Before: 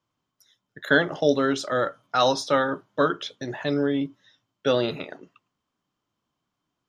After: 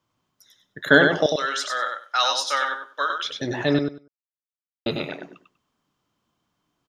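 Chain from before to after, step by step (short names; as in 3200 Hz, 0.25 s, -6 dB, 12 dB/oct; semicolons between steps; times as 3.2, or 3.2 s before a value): 1.26–3.25 HPF 1300 Hz 12 dB/oct; 3.79–4.86 mute; feedback echo 97 ms, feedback 17%, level -5 dB; gain +4.5 dB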